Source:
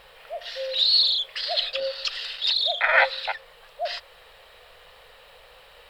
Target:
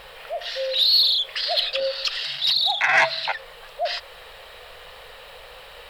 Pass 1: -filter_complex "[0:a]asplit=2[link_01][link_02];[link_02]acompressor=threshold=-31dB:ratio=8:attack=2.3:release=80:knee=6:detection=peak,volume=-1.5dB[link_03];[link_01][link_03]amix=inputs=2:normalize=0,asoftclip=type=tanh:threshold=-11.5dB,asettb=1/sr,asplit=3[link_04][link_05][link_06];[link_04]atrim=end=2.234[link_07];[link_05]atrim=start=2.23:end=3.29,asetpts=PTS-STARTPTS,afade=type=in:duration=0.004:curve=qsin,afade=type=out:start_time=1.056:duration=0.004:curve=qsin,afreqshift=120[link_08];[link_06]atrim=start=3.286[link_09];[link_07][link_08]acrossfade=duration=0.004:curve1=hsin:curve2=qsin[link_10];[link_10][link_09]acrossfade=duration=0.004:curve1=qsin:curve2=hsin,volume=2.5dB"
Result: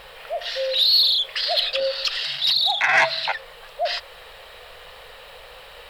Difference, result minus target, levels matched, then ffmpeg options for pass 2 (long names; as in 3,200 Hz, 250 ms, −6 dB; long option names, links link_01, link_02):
downward compressor: peak gain reduction −7.5 dB
-filter_complex "[0:a]asplit=2[link_01][link_02];[link_02]acompressor=threshold=-39.5dB:ratio=8:attack=2.3:release=80:knee=6:detection=peak,volume=-1.5dB[link_03];[link_01][link_03]amix=inputs=2:normalize=0,asoftclip=type=tanh:threshold=-11.5dB,asettb=1/sr,asplit=3[link_04][link_05][link_06];[link_04]atrim=end=2.234[link_07];[link_05]atrim=start=2.23:end=3.29,asetpts=PTS-STARTPTS,afade=type=in:duration=0.004:curve=qsin,afade=type=out:start_time=1.056:duration=0.004:curve=qsin,afreqshift=120[link_08];[link_06]atrim=start=3.286[link_09];[link_07][link_08]acrossfade=duration=0.004:curve1=hsin:curve2=qsin[link_10];[link_10][link_09]acrossfade=duration=0.004:curve1=qsin:curve2=hsin,volume=2.5dB"